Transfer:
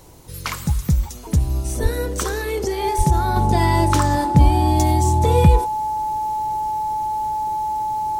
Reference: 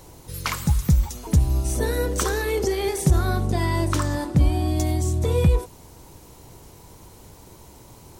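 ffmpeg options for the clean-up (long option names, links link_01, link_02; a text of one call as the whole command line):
ffmpeg -i in.wav -filter_complex "[0:a]bandreject=frequency=860:width=30,asplit=3[link_01][link_02][link_03];[link_01]afade=type=out:start_time=1.82:duration=0.02[link_04];[link_02]highpass=frequency=140:width=0.5412,highpass=frequency=140:width=1.3066,afade=type=in:start_time=1.82:duration=0.02,afade=type=out:start_time=1.94:duration=0.02[link_05];[link_03]afade=type=in:start_time=1.94:duration=0.02[link_06];[link_04][link_05][link_06]amix=inputs=3:normalize=0,asplit=3[link_07][link_08][link_09];[link_07]afade=type=out:start_time=2.97:duration=0.02[link_10];[link_08]highpass=frequency=140:width=0.5412,highpass=frequency=140:width=1.3066,afade=type=in:start_time=2.97:duration=0.02,afade=type=out:start_time=3.09:duration=0.02[link_11];[link_09]afade=type=in:start_time=3.09:duration=0.02[link_12];[link_10][link_11][link_12]amix=inputs=3:normalize=0,asetnsamples=nb_out_samples=441:pad=0,asendcmd='3.36 volume volume -5dB',volume=0dB" out.wav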